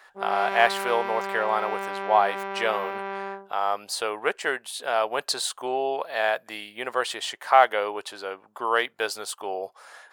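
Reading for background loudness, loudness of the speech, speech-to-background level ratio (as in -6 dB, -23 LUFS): -32.0 LUFS, -26.0 LUFS, 6.0 dB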